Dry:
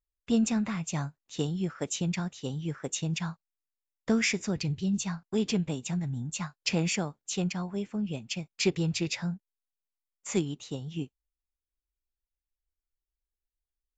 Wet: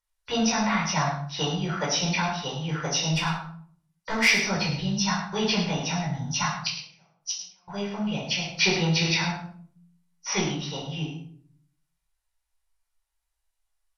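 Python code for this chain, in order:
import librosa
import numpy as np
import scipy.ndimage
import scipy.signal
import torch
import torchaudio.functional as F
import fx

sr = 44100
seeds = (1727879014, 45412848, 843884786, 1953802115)

y = fx.freq_compress(x, sr, knee_hz=3900.0, ratio=1.5)
y = fx.tube_stage(y, sr, drive_db=25.0, bias=0.45, at=(3.12, 4.28))
y = fx.gate_flip(y, sr, shuts_db=-26.0, range_db=-41, at=(6.67, 7.68))
y = fx.low_shelf_res(y, sr, hz=520.0, db=-12.0, q=1.5)
y = y + 10.0 ** (-9.5 / 20.0) * np.pad(y, (int(104 * sr / 1000.0), 0))[:len(y)]
y = fx.room_shoebox(y, sr, seeds[0], volume_m3=650.0, walls='furnished', distance_m=4.7)
y = F.gain(torch.from_numpy(y), 5.0).numpy()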